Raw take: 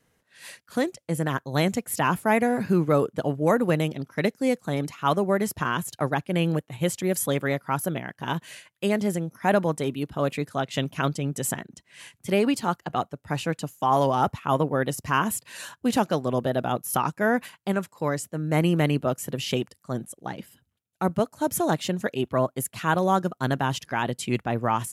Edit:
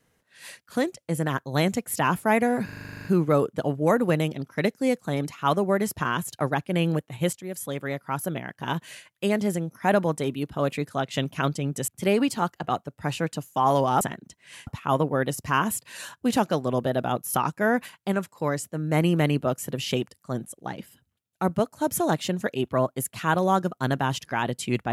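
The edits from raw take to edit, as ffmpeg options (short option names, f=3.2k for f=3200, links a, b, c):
-filter_complex "[0:a]asplit=15[a][b][c][d][e][f][g][h][i][j][k][l][m][n][o];[a]atrim=end=2.692[p];[b]atrim=start=2.648:end=2.692[q];[c]atrim=start=2.648:end=2.692[r];[d]atrim=start=2.648:end=2.692[s];[e]atrim=start=2.648:end=2.692[t];[f]atrim=start=2.648:end=2.692[u];[g]atrim=start=2.648:end=2.692[v];[h]atrim=start=2.648:end=2.692[w];[i]atrim=start=2.648:end=2.692[x];[j]atrim=start=2.648:end=2.692[y];[k]atrim=start=2.648:end=6.93,asetpts=PTS-STARTPTS,afade=t=out:st=4.278:d=0.004:c=hsin:silence=0.223872[z];[l]atrim=start=6.93:end=11.482,asetpts=PTS-STARTPTS,afade=t=in:d=1.24:silence=0.223872[aa];[m]atrim=start=12.138:end=14.272[ab];[n]atrim=start=11.478:end=12.142[ac];[o]atrim=start=14.268[ad];[p][q]acrossfade=d=0.004:c1=hsin:c2=hsin[ae];[ae][r]acrossfade=d=0.004:c1=hsin:c2=hsin[af];[af][s]acrossfade=d=0.004:c1=hsin:c2=hsin[ag];[ag][t]acrossfade=d=0.004:c1=hsin:c2=hsin[ah];[ah][u]acrossfade=d=0.004:c1=hsin:c2=hsin[ai];[ai][v]acrossfade=d=0.004:c1=hsin:c2=hsin[aj];[aj][w]acrossfade=d=0.004:c1=hsin:c2=hsin[ak];[ak][x]acrossfade=d=0.004:c1=hsin:c2=hsin[al];[al][y]acrossfade=d=0.004:c1=hsin:c2=hsin[am];[z][aa]concat=n=2:v=0:a=1[an];[am][an]acrossfade=d=0.004:c1=hsin:c2=hsin[ao];[ao][ab]acrossfade=d=0.004:c1=hsin:c2=hsin[ap];[ap][ac]acrossfade=d=0.004:c1=hsin:c2=hsin[aq];[aq][ad]acrossfade=d=0.004:c1=hsin:c2=hsin"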